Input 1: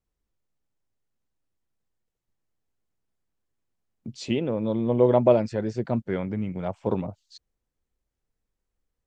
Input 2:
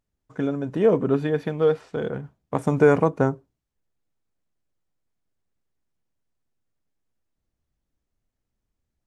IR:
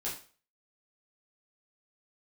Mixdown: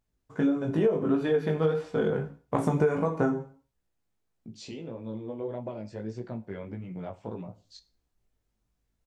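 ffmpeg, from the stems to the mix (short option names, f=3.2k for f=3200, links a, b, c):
-filter_complex "[0:a]acompressor=threshold=-35dB:ratio=3,adelay=400,volume=0dB,asplit=2[a][b];[b]volume=-12.5dB[c];[1:a]volume=1dB,asplit=3[d][e][f];[e]volume=-5.5dB[g];[f]apad=whole_len=417420[h];[a][h]sidechaincompress=threshold=-31dB:ratio=8:attack=5.9:release=1340[i];[2:a]atrim=start_sample=2205[j];[c][g]amix=inputs=2:normalize=0[k];[k][j]afir=irnorm=-1:irlink=0[l];[i][d][l]amix=inputs=3:normalize=0,flanger=delay=16.5:depth=3.7:speed=1.6,acompressor=threshold=-21dB:ratio=8"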